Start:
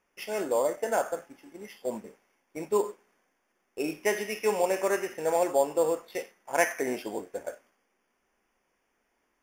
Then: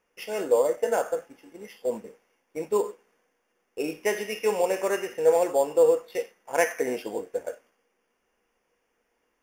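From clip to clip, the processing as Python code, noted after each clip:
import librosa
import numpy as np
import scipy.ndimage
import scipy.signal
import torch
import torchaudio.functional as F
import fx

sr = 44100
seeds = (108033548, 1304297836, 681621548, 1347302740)

y = fx.small_body(x, sr, hz=(480.0, 2800.0), ring_ms=100, db=12)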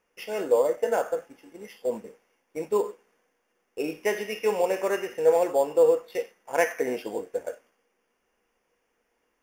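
y = fx.dynamic_eq(x, sr, hz=8800.0, q=0.78, threshold_db=-48.0, ratio=4.0, max_db=-5)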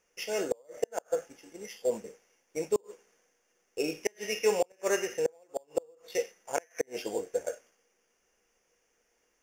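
y = fx.graphic_eq_15(x, sr, hz=(250, 1000, 6300), db=(-5, -5, 11))
y = fx.gate_flip(y, sr, shuts_db=-15.0, range_db=-35)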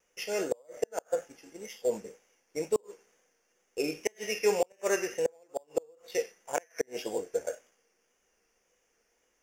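y = fx.wow_flutter(x, sr, seeds[0], rate_hz=2.1, depth_cents=51.0)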